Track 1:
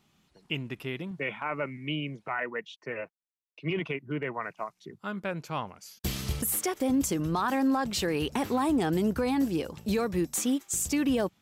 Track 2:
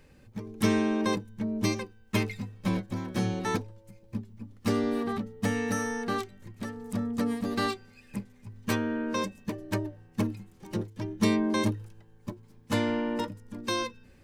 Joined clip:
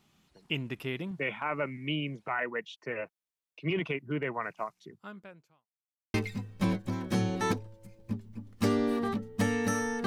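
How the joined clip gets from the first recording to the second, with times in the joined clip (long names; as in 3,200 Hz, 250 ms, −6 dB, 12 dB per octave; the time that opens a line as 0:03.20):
track 1
0:04.66–0:05.68: fade out quadratic
0:05.68–0:06.14: silence
0:06.14: continue with track 2 from 0:02.18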